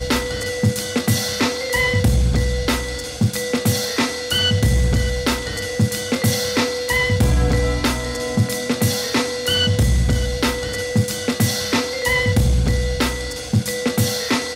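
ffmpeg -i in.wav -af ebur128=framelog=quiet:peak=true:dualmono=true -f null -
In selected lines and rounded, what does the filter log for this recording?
Integrated loudness:
  I:         -16.3 LUFS
  Threshold: -26.3 LUFS
Loudness range:
  LRA:         0.8 LU
  Threshold: -36.2 LUFS
  LRA low:   -16.5 LUFS
  LRA high:  -15.8 LUFS
True peak:
  Peak:       -6.8 dBFS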